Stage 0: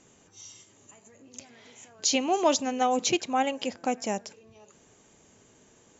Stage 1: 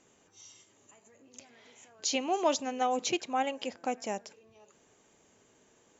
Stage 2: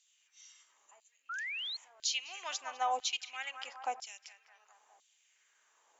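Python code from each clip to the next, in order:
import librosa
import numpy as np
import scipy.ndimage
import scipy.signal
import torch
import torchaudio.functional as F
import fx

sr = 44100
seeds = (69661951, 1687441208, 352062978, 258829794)

y1 = fx.bass_treble(x, sr, bass_db=-6, treble_db=-3)
y1 = y1 * 10.0 ** (-4.0 / 20.0)
y2 = fx.echo_banded(y1, sr, ms=204, feedback_pct=53, hz=1100.0, wet_db=-10)
y2 = fx.filter_lfo_highpass(y2, sr, shape='saw_down', hz=1.0, low_hz=730.0, high_hz=3800.0, q=2.1)
y2 = fx.spec_paint(y2, sr, seeds[0], shape='rise', start_s=1.29, length_s=0.48, low_hz=1300.0, high_hz=4400.0, level_db=-34.0)
y2 = y2 * 10.0 ** (-5.0 / 20.0)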